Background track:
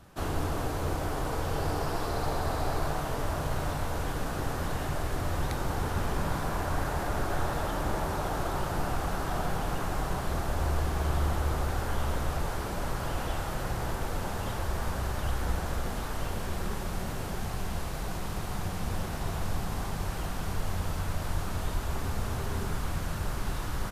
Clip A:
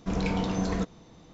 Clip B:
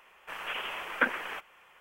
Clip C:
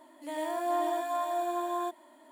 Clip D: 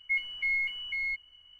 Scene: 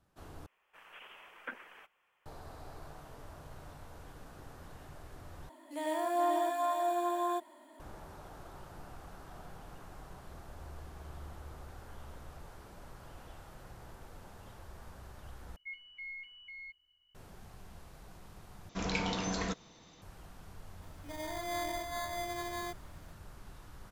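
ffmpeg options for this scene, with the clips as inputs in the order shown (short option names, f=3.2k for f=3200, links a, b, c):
-filter_complex "[3:a]asplit=2[a][b];[0:a]volume=-19dB[c];[4:a]acrossover=split=4000[d][e];[e]acompressor=threshold=-54dB:ratio=4:attack=1:release=60[f];[d][f]amix=inputs=2:normalize=0[g];[1:a]tiltshelf=f=830:g=-6[h];[b]acrusher=samples=16:mix=1:aa=0.000001[i];[c]asplit=5[j][k][l][m][n];[j]atrim=end=0.464[o];[2:a]atrim=end=1.8,asetpts=PTS-STARTPTS,volume=-17dB[p];[k]atrim=start=2.256:end=5.494[q];[a]atrim=end=2.31,asetpts=PTS-STARTPTS,volume=-0.5dB[r];[l]atrim=start=7.796:end=15.564[s];[g]atrim=end=1.59,asetpts=PTS-STARTPTS,volume=-15.5dB[t];[m]atrim=start=17.146:end=18.694[u];[h]atrim=end=1.33,asetpts=PTS-STARTPTS,volume=-3.5dB[v];[n]atrim=start=20.016[w];[i]atrim=end=2.31,asetpts=PTS-STARTPTS,volume=-7.5dB,afade=t=in:d=0.004:c=hsin,afade=t=out:st=2.306:d=0.004:c=hsin,adelay=20820[x];[o][p]acrossfade=d=0.004:c1=hsin:c2=hsin[y];[y][q]acrossfade=d=0.004:c1=hsin:c2=hsin[z];[z][r]acrossfade=d=0.004:c1=hsin:c2=hsin[aa];[aa][s]acrossfade=d=0.004:c1=hsin:c2=hsin[ab];[ab][t]acrossfade=d=0.004:c1=hsin:c2=hsin[ac];[ac][u]acrossfade=d=0.004:c1=hsin:c2=hsin[ad];[ad][v]acrossfade=d=0.004:c1=hsin:c2=hsin[ae];[ae][w]acrossfade=d=0.004:c1=hsin:c2=hsin[af];[af][x]amix=inputs=2:normalize=0"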